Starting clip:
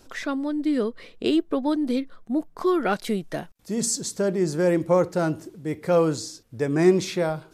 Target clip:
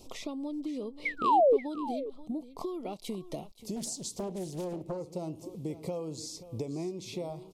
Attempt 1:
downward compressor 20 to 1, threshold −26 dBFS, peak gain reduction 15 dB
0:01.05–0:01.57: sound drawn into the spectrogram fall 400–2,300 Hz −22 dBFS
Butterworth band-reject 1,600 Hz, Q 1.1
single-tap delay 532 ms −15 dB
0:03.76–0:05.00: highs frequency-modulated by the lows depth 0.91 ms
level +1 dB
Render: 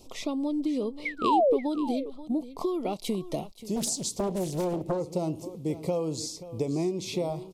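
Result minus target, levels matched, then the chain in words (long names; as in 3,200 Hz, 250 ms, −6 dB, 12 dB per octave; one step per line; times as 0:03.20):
downward compressor: peak gain reduction −7.5 dB
downward compressor 20 to 1, threshold −34 dBFS, peak gain reduction 22.5 dB
0:01.05–0:01.57: sound drawn into the spectrogram fall 400–2,300 Hz −22 dBFS
Butterworth band-reject 1,600 Hz, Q 1.1
single-tap delay 532 ms −15 dB
0:03.76–0:05.00: highs frequency-modulated by the lows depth 0.91 ms
level +1 dB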